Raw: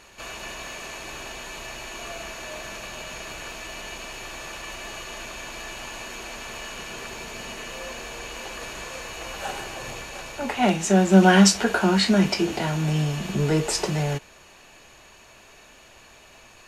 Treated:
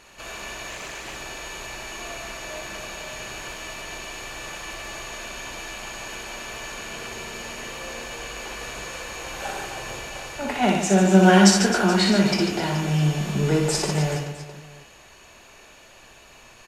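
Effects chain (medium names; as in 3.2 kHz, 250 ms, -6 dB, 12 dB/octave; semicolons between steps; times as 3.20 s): reverse bouncing-ball echo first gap 60 ms, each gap 1.4×, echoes 5; 0.70–1.16 s: loudspeaker Doppler distortion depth 0.27 ms; trim -1 dB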